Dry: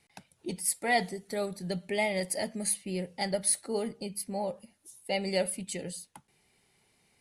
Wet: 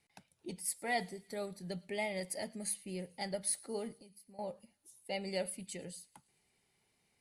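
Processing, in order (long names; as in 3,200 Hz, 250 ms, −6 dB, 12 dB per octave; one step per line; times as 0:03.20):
0:03.93–0:04.39: downward compressor 4 to 1, threshold −51 dBFS, peak gain reduction 17.5 dB
on a send: delay with a high-pass on its return 109 ms, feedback 66%, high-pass 2,600 Hz, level −23.5 dB
on the sum: level −8 dB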